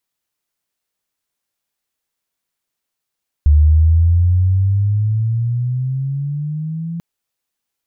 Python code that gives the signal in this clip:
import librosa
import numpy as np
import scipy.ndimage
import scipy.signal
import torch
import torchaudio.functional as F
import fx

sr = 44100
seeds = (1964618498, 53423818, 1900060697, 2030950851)

y = fx.chirp(sr, length_s=3.54, from_hz=73.0, to_hz=170.0, law='logarithmic', from_db=-6.0, to_db=-21.5)